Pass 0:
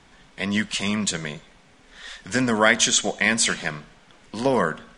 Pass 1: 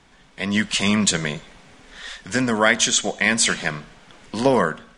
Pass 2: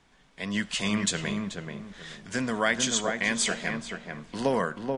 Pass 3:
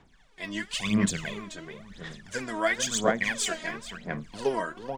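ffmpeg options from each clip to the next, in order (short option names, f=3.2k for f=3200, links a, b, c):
-af "dynaudnorm=f=110:g=11:m=11.5dB,volume=-1dB"
-filter_complex "[0:a]asplit=2[a][b];[b]adelay=433,lowpass=f=1.4k:p=1,volume=-3.5dB,asplit=2[c][d];[d]adelay=433,lowpass=f=1.4k:p=1,volume=0.29,asplit=2[e][f];[f]adelay=433,lowpass=f=1.4k:p=1,volume=0.29,asplit=2[g][h];[h]adelay=433,lowpass=f=1.4k:p=1,volume=0.29[i];[a][c][e][g][i]amix=inputs=5:normalize=0,volume=-8.5dB"
-af "aphaser=in_gain=1:out_gain=1:delay=3.2:decay=0.75:speed=0.97:type=sinusoidal,volume=-5.5dB"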